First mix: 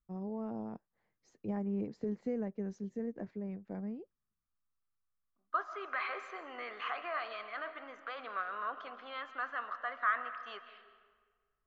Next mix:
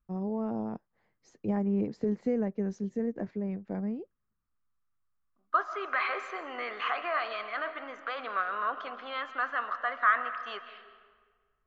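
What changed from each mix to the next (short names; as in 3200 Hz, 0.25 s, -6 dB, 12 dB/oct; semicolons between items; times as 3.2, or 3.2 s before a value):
first voice +7.0 dB; second voice +7.0 dB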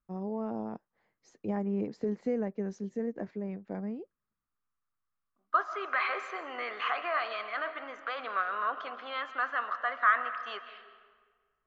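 master: add low shelf 170 Hz -9 dB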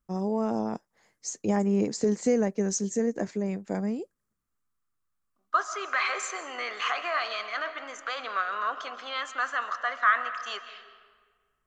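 first voice +6.5 dB; master: remove air absorption 340 m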